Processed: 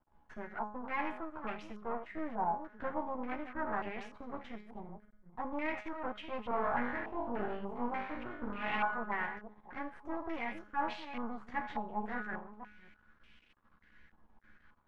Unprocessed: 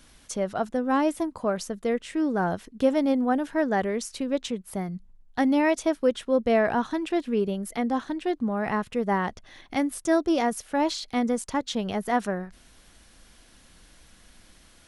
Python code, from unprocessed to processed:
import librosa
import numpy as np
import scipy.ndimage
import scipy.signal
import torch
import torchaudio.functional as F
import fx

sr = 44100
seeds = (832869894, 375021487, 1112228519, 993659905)

y = fx.reverse_delay(x, sr, ms=243, wet_db=-10)
y = fx.peak_eq(y, sr, hz=650.0, db=-9.0, octaves=0.51)
y = fx.doubler(y, sr, ms=13.0, db=-4.5)
y = fx.room_flutter(y, sr, wall_m=3.5, rt60_s=0.56, at=(6.49, 8.94))
y = 10.0 ** (-14.5 / 20.0) * np.tanh(y / 10.0 ** (-14.5 / 20.0))
y = fx.comb_fb(y, sr, f0_hz=210.0, decay_s=0.66, harmonics='all', damping=0.0, mix_pct=80)
y = np.maximum(y, 0.0)
y = fx.dynamic_eq(y, sr, hz=840.0, q=1.8, threshold_db=-53.0, ratio=4.0, max_db=6)
y = fx.filter_held_lowpass(y, sr, hz=3.4, low_hz=880.0, high_hz=2600.0)